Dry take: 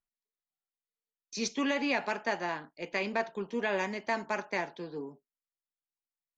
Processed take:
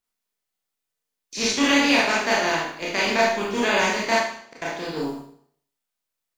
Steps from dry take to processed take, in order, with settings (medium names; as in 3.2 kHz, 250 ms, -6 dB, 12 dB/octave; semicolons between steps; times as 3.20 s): spectral contrast reduction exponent 0.63; 4.15–4.62 s: inverted gate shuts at -29 dBFS, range -34 dB; Schroeder reverb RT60 0.6 s, combs from 25 ms, DRR -5 dB; trim +5 dB